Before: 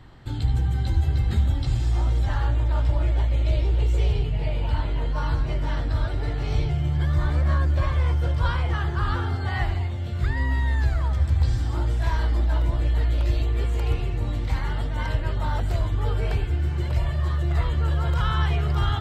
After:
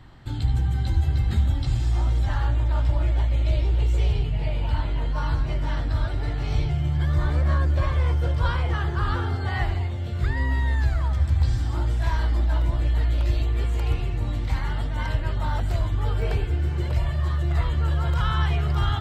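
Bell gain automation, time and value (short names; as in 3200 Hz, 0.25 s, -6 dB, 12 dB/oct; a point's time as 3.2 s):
bell 450 Hz 0.53 oct
-4 dB
from 7.08 s +2.5 dB
from 10.75 s -4 dB
from 16.22 s +3.5 dB
from 16.95 s -3 dB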